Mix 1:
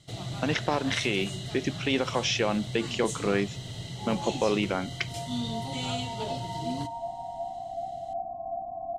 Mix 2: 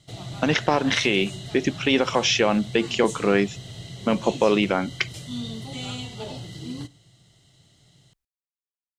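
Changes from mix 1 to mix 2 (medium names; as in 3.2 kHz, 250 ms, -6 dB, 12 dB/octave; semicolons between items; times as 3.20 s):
speech +6.5 dB; second sound: muted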